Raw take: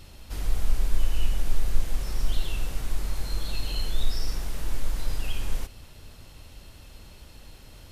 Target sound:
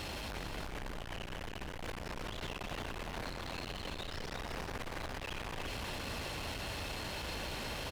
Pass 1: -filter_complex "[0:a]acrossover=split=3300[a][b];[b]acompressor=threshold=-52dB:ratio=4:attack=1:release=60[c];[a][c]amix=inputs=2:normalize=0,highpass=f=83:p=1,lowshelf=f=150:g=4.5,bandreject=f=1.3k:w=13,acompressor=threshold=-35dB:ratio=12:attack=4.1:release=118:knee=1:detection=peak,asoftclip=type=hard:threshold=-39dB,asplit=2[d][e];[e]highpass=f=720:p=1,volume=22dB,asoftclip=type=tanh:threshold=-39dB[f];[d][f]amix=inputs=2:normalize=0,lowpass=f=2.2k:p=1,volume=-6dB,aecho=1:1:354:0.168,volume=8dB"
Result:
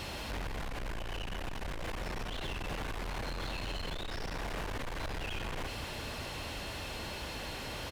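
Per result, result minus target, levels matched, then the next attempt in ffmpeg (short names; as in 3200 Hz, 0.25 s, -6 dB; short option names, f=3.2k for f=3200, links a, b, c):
echo-to-direct -10.5 dB; hard clip: distortion -6 dB
-filter_complex "[0:a]acrossover=split=3300[a][b];[b]acompressor=threshold=-52dB:ratio=4:attack=1:release=60[c];[a][c]amix=inputs=2:normalize=0,highpass=f=83:p=1,lowshelf=f=150:g=4.5,bandreject=f=1.3k:w=13,acompressor=threshold=-35dB:ratio=12:attack=4.1:release=118:knee=1:detection=peak,asoftclip=type=hard:threshold=-39dB,asplit=2[d][e];[e]highpass=f=720:p=1,volume=22dB,asoftclip=type=tanh:threshold=-39dB[f];[d][f]amix=inputs=2:normalize=0,lowpass=f=2.2k:p=1,volume=-6dB,aecho=1:1:354:0.562,volume=8dB"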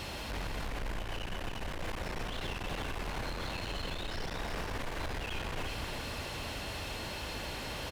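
hard clip: distortion -6 dB
-filter_complex "[0:a]acrossover=split=3300[a][b];[b]acompressor=threshold=-52dB:ratio=4:attack=1:release=60[c];[a][c]amix=inputs=2:normalize=0,highpass=f=83:p=1,lowshelf=f=150:g=4.5,bandreject=f=1.3k:w=13,acompressor=threshold=-35dB:ratio=12:attack=4.1:release=118:knee=1:detection=peak,asoftclip=type=hard:threshold=-47dB,asplit=2[d][e];[e]highpass=f=720:p=1,volume=22dB,asoftclip=type=tanh:threshold=-39dB[f];[d][f]amix=inputs=2:normalize=0,lowpass=f=2.2k:p=1,volume=-6dB,aecho=1:1:354:0.562,volume=8dB"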